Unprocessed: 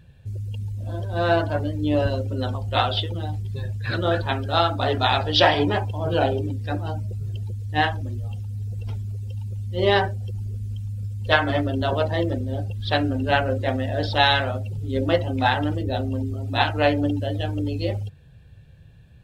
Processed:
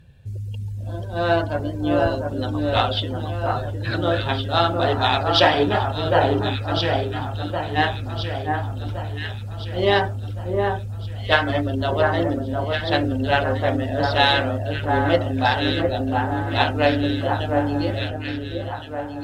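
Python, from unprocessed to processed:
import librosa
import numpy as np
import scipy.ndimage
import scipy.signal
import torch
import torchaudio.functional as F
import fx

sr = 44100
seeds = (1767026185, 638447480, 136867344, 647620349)

y = fx.echo_alternate(x, sr, ms=708, hz=1600.0, feedback_pct=67, wet_db=-3)
y = fx.cheby_harmonics(y, sr, harmonics=(7,), levels_db=(-39,), full_scale_db=-2.0)
y = F.gain(torch.from_numpy(y), 1.0).numpy()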